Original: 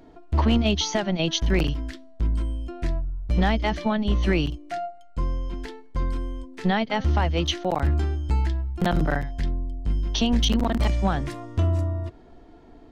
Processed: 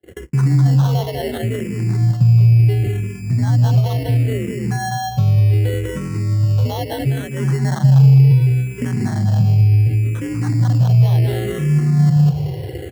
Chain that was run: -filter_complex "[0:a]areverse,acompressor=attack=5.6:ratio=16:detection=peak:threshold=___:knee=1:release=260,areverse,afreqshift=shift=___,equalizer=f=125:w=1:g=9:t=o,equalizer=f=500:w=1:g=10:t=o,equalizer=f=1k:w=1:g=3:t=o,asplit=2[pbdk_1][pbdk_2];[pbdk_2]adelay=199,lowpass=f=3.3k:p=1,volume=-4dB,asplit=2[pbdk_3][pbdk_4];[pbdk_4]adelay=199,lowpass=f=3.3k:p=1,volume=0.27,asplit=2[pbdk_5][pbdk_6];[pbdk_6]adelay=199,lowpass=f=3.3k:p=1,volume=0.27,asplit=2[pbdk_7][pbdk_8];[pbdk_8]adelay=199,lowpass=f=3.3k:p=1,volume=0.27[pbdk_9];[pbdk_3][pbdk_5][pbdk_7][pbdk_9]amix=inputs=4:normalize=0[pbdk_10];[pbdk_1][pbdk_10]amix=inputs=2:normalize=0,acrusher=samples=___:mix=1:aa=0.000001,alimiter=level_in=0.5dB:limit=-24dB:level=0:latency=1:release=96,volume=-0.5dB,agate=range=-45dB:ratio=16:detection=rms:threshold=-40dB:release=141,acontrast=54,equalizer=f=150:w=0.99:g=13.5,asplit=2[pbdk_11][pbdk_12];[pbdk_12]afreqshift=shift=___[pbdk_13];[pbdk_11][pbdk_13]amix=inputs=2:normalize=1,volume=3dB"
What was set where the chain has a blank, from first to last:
-31dB, 61, 18, -0.7